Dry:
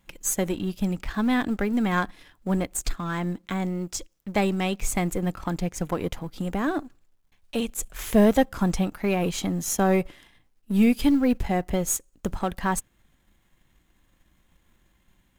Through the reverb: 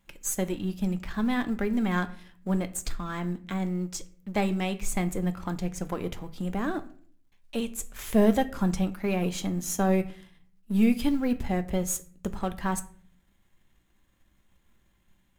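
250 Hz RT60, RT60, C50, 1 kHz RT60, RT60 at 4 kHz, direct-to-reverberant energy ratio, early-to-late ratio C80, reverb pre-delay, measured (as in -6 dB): 0.80 s, 0.50 s, 17.0 dB, 0.45 s, 0.35 s, 10.0 dB, 20.5 dB, 5 ms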